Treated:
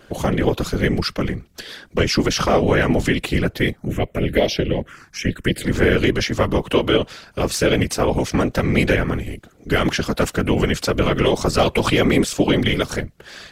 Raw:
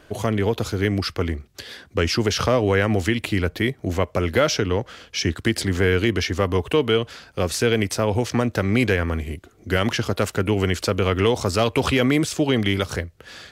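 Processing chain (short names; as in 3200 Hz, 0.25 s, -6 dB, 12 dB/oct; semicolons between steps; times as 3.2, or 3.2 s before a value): 3.77–5.64 envelope phaser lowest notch 430 Hz, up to 1400 Hz, full sweep at -15.5 dBFS; whisperiser; gain +2.5 dB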